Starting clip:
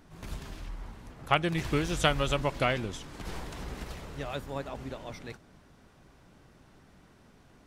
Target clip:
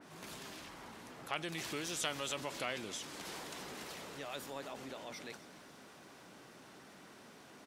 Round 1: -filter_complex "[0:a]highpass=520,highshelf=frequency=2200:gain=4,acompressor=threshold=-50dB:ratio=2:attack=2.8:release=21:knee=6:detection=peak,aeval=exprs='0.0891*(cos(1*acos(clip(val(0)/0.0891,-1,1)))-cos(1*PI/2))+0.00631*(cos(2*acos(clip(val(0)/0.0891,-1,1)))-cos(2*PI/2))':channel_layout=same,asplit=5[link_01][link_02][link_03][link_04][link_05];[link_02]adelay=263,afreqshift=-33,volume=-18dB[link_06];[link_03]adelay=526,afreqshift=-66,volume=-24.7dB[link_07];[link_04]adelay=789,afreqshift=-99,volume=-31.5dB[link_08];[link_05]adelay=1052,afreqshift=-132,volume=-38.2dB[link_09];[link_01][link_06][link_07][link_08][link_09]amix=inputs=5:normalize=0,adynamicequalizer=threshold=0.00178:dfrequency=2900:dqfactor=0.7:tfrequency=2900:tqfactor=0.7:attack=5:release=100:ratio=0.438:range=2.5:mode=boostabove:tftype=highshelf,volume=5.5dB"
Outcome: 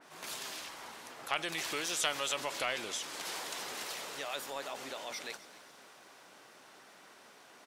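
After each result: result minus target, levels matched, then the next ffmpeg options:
250 Hz band −7.5 dB; downward compressor: peak gain reduction −5.5 dB
-filter_complex "[0:a]highpass=240,highshelf=frequency=2200:gain=4,acompressor=threshold=-50dB:ratio=2:attack=2.8:release=21:knee=6:detection=peak,aeval=exprs='0.0891*(cos(1*acos(clip(val(0)/0.0891,-1,1)))-cos(1*PI/2))+0.00631*(cos(2*acos(clip(val(0)/0.0891,-1,1)))-cos(2*PI/2))':channel_layout=same,asplit=5[link_01][link_02][link_03][link_04][link_05];[link_02]adelay=263,afreqshift=-33,volume=-18dB[link_06];[link_03]adelay=526,afreqshift=-66,volume=-24.7dB[link_07];[link_04]adelay=789,afreqshift=-99,volume=-31.5dB[link_08];[link_05]adelay=1052,afreqshift=-132,volume=-38.2dB[link_09];[link_01][link_06][link_07][link_08][link_09]amix=inputs=5:normalize=0,adynamicequalizer=threshold=0.00178:dfrequency=2900:dqfactor=0.7:tfrequency=2900:tqfactor=0.7:attack=5:release=100:ratio=0.438:range=2.5:mode=boostabove:tftype=highshelf,volume=5.5dB"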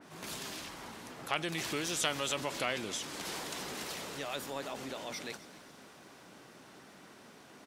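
downward compressor: peak gain reduction −5 dB
-filter_complex "[0:a]highpass=240,highshelf=frequency=2200:gain=4,acompressor=threshold=-60dB:ratio=2:attack=2.8:release=21:knee=6:detection=peak,aeval=exprs='0.0891*(cos(1*acos(clip(val(0)/0.0891,-1,1)))-cos(1*PI/2))+0.00631*(cos(2*acos(clip(val(0)/0.0891,-1,1)))-cos(2*PI/2))':channel_layout=same,asplit=5[link_01][link_02][link_03][link_04][link_05];[link_02]adelay=263,afreqshift=-33,volume=-18dB[link_06];[link_03]adelay=526,afreqshift=-66,volume=-24.7dB[link_07];[link_04]adelay=789,afreqshift=-99,volume=-31.5dB[link_08];[link_05]adelay=1052,afreqshift=-132,volume=-38.2dB[link_09];[link_01][link_06][link_07][link_08][link_09]amix=inputs=5:normalize=0,adynamicequalizer=threshold=0.00178:dfrequency=2900:dqfactor=0.7:tfrequency=2900:tqfactor=0.7:attack=5:release=100:ratio=0.438:range=2.5:mode=boostabove:tftype=highshelf,volume=5.5dB"

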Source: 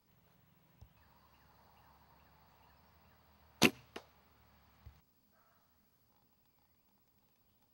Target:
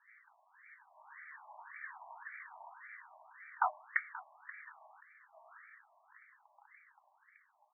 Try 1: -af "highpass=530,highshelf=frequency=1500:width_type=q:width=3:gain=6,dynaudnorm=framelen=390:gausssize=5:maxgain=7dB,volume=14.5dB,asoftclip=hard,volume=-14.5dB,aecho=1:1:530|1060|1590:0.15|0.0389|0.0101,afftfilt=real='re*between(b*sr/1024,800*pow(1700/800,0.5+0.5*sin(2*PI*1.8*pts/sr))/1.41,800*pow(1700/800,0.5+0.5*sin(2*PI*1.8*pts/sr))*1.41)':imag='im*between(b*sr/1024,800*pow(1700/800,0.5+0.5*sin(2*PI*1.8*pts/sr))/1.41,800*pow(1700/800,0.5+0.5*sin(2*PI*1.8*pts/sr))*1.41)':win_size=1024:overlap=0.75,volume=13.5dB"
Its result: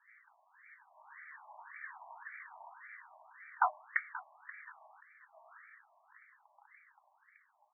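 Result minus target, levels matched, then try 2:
gain into a clipping stage and back: distortion −5 dB
-af "highpass=530,highshelf=frequency=1500:width_type=q:width=3:gain=6,dynaudnorm=framelen=390:gausssize=5:maxgain=7dB,volume=22.5dB,asoftclip=hard,volume=-22.5dB,aecho=1:1:530|1060|1590:0.15|0.0389|0.0101,afftfilt=real='re*between(b*sr/1024,800*pow(1700/800,0.5+0.5*sin(2*PI*1.8*pts/sr))/1.41,800*pow(1700/800,0.5+0.5*sin(2*PI*1.8*pts/sr))*1.41)':imag='im*between(b*sr/1024,800*pow(1700/800,0.5+0.5*sin(2*PI*1.8*pts/sr))/1.41,800*pow(1700/800,0.5+0.5*sin(2*PI*1.8*pts/sr))*1.41)':win_size=1024:overlap=0.75,volume=13.5dB"

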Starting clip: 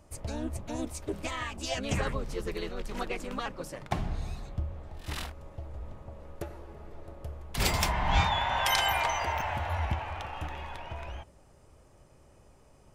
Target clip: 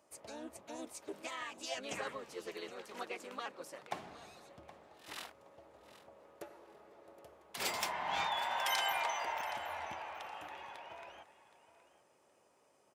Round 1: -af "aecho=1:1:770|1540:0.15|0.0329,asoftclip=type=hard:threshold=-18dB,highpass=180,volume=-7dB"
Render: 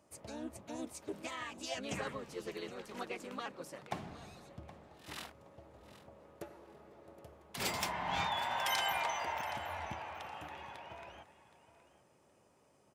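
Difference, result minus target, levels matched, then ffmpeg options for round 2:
250 Hz band +5.5 dB
-af "aecho=1:1:770|1540:0.15|0.0329,asoftclip=type=hard:threshold=-18dB,highpass=370,volume=-7dB"

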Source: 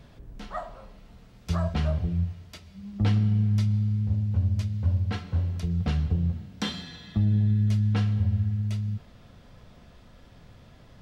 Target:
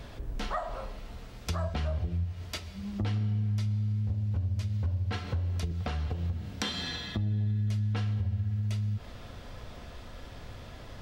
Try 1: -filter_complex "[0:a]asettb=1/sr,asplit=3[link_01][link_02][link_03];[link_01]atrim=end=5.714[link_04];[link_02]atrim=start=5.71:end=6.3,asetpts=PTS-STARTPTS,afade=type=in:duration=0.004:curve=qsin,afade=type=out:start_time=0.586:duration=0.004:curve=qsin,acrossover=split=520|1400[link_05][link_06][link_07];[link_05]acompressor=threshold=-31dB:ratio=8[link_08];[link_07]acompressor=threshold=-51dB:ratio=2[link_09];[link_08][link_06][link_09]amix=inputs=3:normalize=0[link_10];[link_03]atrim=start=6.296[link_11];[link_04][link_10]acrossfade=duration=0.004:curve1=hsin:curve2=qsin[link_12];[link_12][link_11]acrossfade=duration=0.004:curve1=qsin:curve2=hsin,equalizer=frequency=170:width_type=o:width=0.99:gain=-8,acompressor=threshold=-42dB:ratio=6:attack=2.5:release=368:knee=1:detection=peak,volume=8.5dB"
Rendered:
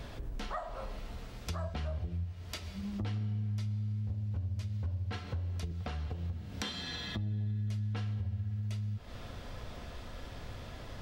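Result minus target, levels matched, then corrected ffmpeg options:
downward compressor: peak gain reduction +5.5 dB
-filter_complex "[0:a]asettb=1/sr,asplit=3[link_01][link_02][link_03];[link_01]atrim=end=5.714[link_04];[link_02]atrim=start=5.71:end=6.3,asetpts=PTS-STARTPTS,afade=type=in:duration=0.004:curve=qsin,afade=type=out:start_time=0.586:duration=0.004:curve=qsin,acrossover=split=520|1400[link_05][link_06][link_07];[link_05]acompressor=threshold=-31dB:ratio=8[link_08];[link_07]acompressor=threshold=-51dB:ratio=2[link_09];[link_08][link_06][link_09]amix=inputs=3:normalize=0[link_10];[link_03]atrim=start=6.296[link_11];[link_04][link_10]acrossfade=duration=0.004:curve1=hsin:curve2=qsin[link_12];[link_12][link_11]acrossfade=duration=0.004:curve1=qsin:curve2=hsin,equalizer=frequency=170:width_type=o:width=0.99:gain=-8,acompressor=threshold=-35.5dB:ratio=6:attack=2.5:release=368:knee=1:detection=peak,volume=8.5dB"

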